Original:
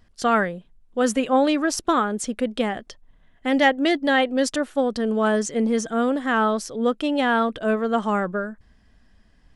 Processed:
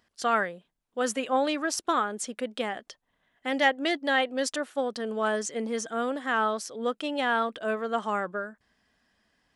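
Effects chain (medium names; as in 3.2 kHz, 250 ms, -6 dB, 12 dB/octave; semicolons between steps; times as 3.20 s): high-pass 540 Hz 6 dB/octave; trim -3.5 dB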